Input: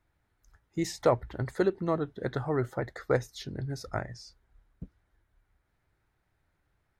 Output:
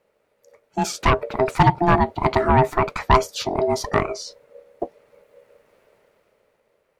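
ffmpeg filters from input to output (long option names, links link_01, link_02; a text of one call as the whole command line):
ffmpeg -i in.wav -af "aeval=exprs='val(0)*sin(2*PI*520*n/s)':channel_layout=same,aeval=exprs='0.335*sin(PI/2*3.16*val(0)/0.335)':channel_layout=same,dynaudnorm=framelen=200:gausssize=11:maxgain=11dB,volume=-4.5dB" out.wav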